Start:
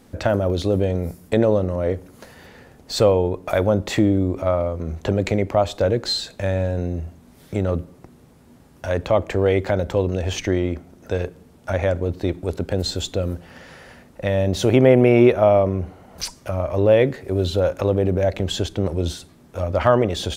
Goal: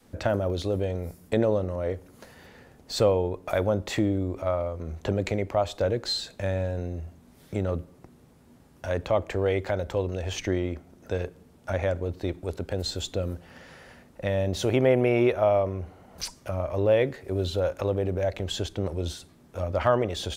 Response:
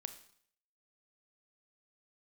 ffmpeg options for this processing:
-af "adynamicequalizer=threshold=0.0251:dfrequency=200:dqfactor=0.78:tfrequency=200:tqfactor=0.78:attack=5:release=100:ratio=0.375:range=3.5:mode=cutabove:tftype=bell,volume=-5.5dB"

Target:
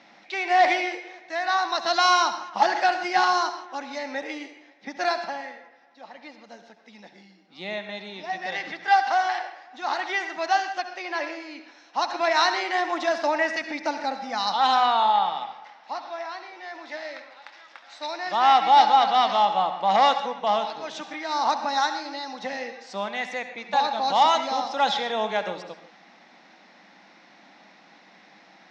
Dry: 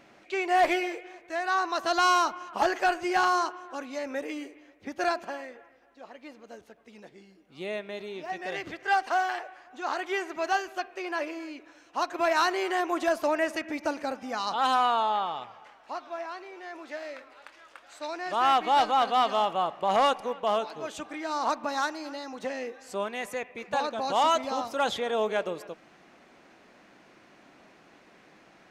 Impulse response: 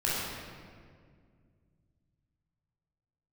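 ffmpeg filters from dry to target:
-filter_complex "[0:a]highpass=frequency=180:width=0.5412,highpass=frequency=180:width=1.3066,equalizer=frequency=190:width_type=q:width=4:gain=6,equalizer=frequency=400:width_type=q:width=4:gain=-8,equalizer=frequency=830:width_type=q:width=4:gain=8,equalizer=frequency=2000:width_type=q:width=4:gain=7,equalizer=frequency=3800:width_type=q:width=4:gain=9,equalizer=frequency=5400:width_type=q:width=4:gain=9,lowpass=frequency=6200:width=0.5412,lowpass=frequency=6200:width=1.3066,asplit=2[link_01][link_02];[1:a]atrim=start_sample=2205,atrim=end_sample=4410,adelay=68[link_03];[link_02][link_03]afir=irnorm=-1:irlink=0,volume=-16dB[link_04];[link_01][link_04]amix=inputs=2:normalize=0"

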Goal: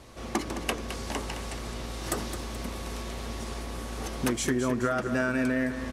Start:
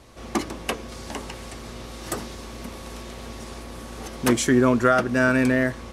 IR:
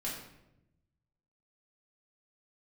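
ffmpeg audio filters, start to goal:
-filter_complex "[0:a]acompressor=threshold=-24dB:ratio=10,asplit=2[link_01][link_02];[link_02]aecho=0:1:214|428|642|856|1070:0.316|0.139|0.0612|0.0269|0.0119[link_03];[link_01][link_03]amix=inputs=2:normalize=0"

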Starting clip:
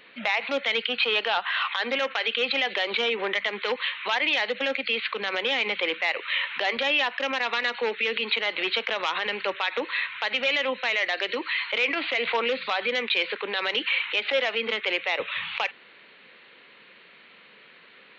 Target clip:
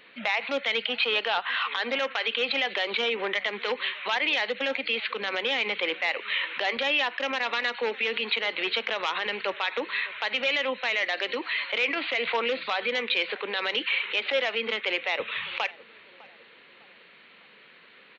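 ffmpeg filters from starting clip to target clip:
ffmpeg -i in.wav -filter_complex "[0:a]asplit=2[link_01][link_02];[link_02]adelay=604,lowpass=frequency=1500:poles=1,volume=-20dB,asplit=2[link_03][link_04];[link_04]adelay=604,lowpass=frequency=1500:poles=1,volume=0.46,asplit=2[link_05][link_06];[link_06]adelay=604,lowpass=frequency=1500:poles=1,volume=0.46[link_07];[link_01][link_03][link_05][link_07]amix=inputs=4:normalize=0,volume=-1.5dB" out.wav

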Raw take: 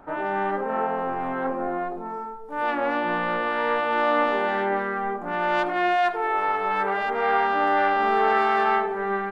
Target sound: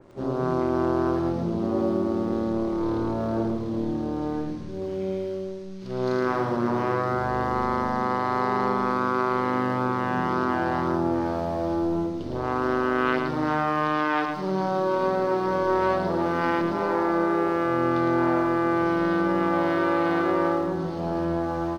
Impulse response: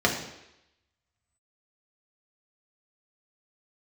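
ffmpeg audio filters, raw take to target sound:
-filter_complex "[0:a]acompressor=threshold=-23dB:ratio=6,aexciter=amount=4.5:drive=6.6:freq=2400,asetrate=18846,aresample=44100,aeval=exprs='sgn(val(0))*max(abs(val(0))-0.00158,0)':channel_layout=same,lowshelf=frequency=140:gain=-3,bandreject=frequency=49.92:width_type=h:width=4,bandreject=frequency=99.84:width_type=h:width=4,bandreject=frequency=149.76:width_type=h:width=4,bandreject=frequency=199.68:width_type=h:width=4,bandreject=frequency=249.6:width_type=h:width=4,bandreject=frequency=299.52:width_type=h:width=4,asplit=2[link_01][link_02];[link_02]aecho=0:1:110:0.501[link_03];[link_01][link_03]amix=inputs=2:normalize=0,adynamicequalizer=threshold=0.0126:dfrequency=2600:dqfactor=0.7:tfrequency=2600:tqfactor=0.7:attack=5:release=100:ratio=0.375:range=1.5:mode=boostabove:tftype=highshelf,volume=2.5dB"

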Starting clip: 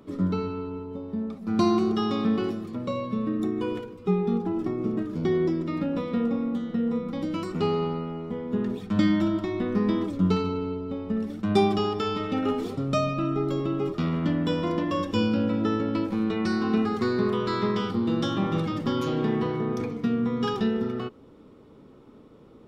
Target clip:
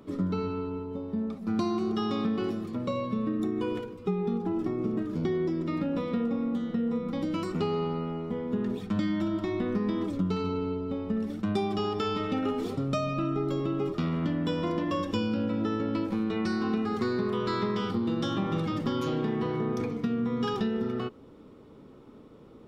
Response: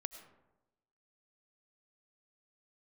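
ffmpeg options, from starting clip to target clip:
-af "acompressor=threshold=-25dB:ratio=6"

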